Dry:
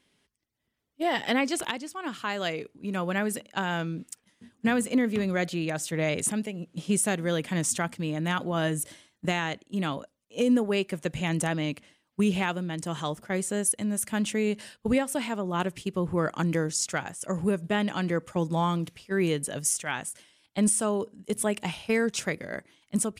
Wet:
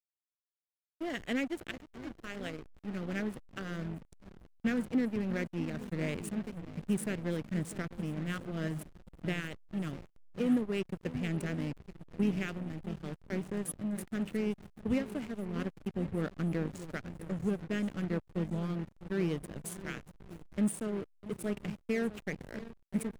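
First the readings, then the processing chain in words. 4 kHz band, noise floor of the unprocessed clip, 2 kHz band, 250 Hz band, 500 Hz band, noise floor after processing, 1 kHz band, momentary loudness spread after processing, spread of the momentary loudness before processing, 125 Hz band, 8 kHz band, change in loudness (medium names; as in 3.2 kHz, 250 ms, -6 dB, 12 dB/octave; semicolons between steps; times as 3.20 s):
-13.5 dB, -77 dBFS, -10.5 dB, -5.5 dB, -9.0 dB, -72 dBFS, -15.5 dB, 10 LU, 8 LU, -5.5 dB, -18.0 dB, -8.0 dB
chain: treble shelf 3 kHz -5 dB; static phaser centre 2.2 kHz, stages 4; shuffle delay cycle 1081 ms, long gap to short 1.5:1, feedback 47%, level -11.5 dB; hysteresis with a dead band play -28.5 dBFS; trim -4 dB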